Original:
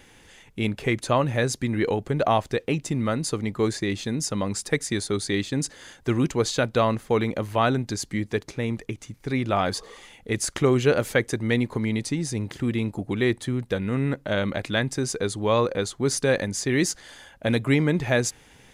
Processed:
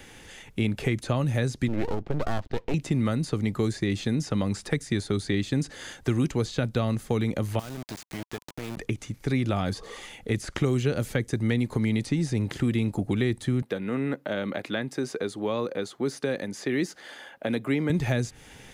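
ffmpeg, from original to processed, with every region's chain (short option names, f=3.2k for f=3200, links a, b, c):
-filter_complex "[0:a]asettb=1/sr,asplit=3[a][b][c];[a]atrim=end=1.684[d];[b]atrim=start=1.68:end=2.74,asetpts=PTS-STARTPTS,afade=t=in:d=0.004:c=qsin,afade=t=out:st=1.056:d=0.004:c=qsin,lowpass=f=3.9k:w=0.5412,lowpass=f=3.9k:w=1.3066,equalizer=f=2.4k:w=0.44:g=-6,aeval=exprs='max(val(0),0)':c=same[e];[c]atrim=start=2.736[f];[d][e]acrossfade=d=0.004:c1=hsin:c2=qsin[g];[g][f]acrossfade=d=0.004:c1=qsin:c2=hsin,asettb=1/sr,asplit=3[h][i][j];[h]atrim=end=7.594[k];[i]atrim=start=7.59:end=8.77,asetpts=PTS-STARTPTS,afade=t=in:d=0.004:c=qsin,afade=t=out:st=1.176:d=0.004:c=qsin,equalizer=f=2k:w=4.3:g=-3.5,acompressor=threshold=-39dB:ratio=3:attack=3.2:release=140:knee=1:detection=peak,aeval=exprs='val(0)*gte(abs(val(0)),0.015)':c=same[l];[j]atrim=start=8.766[m];[k][l]acrossfade=d=0.004:c1=hsin:c2=qsin[n];[n][m]acrossfade=d=0.004:c1=qsin:c2=hsin,asettb=1/sr,asplit=3[o][p][q];[o]atrim=end=13.624[r];[p]atrim=start=13.62:end=17.9,asetpts=PTS-STARTPTS,afade=t=in:d=0.004:c=qsin,afade=t=out:st=4.276:d=0.004:c=qsin,highpass=280,equalizer=f=7.8k:w=0.62:g=-10.5[s];[q]atrim=start=17.896[t];[r][s]acrossfade=d=0.004:c1=hsin:c2=qsin[u];[u][t]acrossfade=d=0.004:c1=qsin:c2=hsin,acrossover=split=3600[v][w];[w]acompressor=threshold=-43dB:ratio=4:attack=1:release=60[x];[v][x]amix=inputs=2:normalize=0,bandreject=f=1k:w=16,acrossover=split=250|4400[y][z][aa];[y]acompressor=threshold=-28dB:ratio=4[ab];[z]acompressor=threshold=-35dB:ratio=4[ac];[aa]acompressor=threshold=-45dB:ratio=4[ad];[ab][ac][ad]amix=inputs=3:normalize=0,volume=4.5dB"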